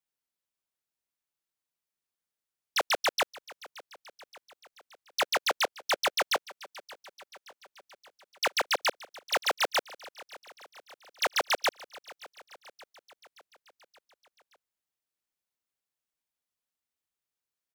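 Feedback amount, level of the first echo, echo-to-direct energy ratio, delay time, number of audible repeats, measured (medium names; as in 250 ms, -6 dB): 59%, -20.0 dB, -18.0 dB, 574 ms, 4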